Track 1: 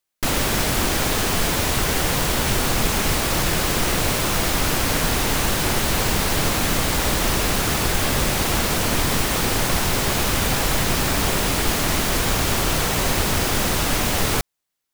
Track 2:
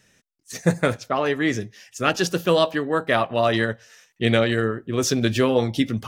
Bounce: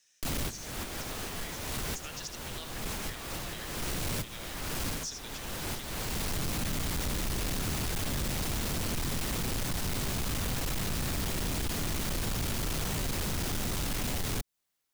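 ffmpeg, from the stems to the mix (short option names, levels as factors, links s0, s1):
-filter_complex "[0:a]volume=0.891[s0];[1:a]acompressor=threshold=0.0282:ratio=2,bandpass=f=6200:t=q:w=1.2:csg=0,volume=0.708,asplit=3[s1][s2][s3];[s2]volume=0.376[s4];[s3]apad=whole_len=658502[s5];[s0][s5]sidechaincompress=threshold=0.00126:ratio=10:attack=5.6:release=334[s6];[s4]aecho=0:1:79:1[s7];[s6][s1][s7]amix=inputs=3:normalize=0,acrossover=split=290|2700[s8][s9][s10];[s8]acompressor=threshold=0.0631:ratio=4[s11];[s9]acompressor=threshold=0.0141:ratio=4[s12];[s10]acompressor=threshold=0.0251:ratio=4[s13];[s11][s12][s13]amix=inputs=3:normalize=0,asoftclip=type=tanh:threshold=0.0376"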